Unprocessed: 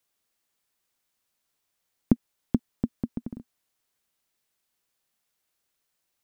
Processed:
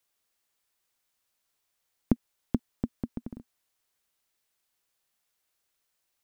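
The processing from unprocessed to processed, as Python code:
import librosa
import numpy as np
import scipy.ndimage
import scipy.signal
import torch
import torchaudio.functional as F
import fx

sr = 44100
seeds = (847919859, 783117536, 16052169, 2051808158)

y = fx.peak_eq(x, sr, hz=200.0, db=-4.5, octaves=1.7)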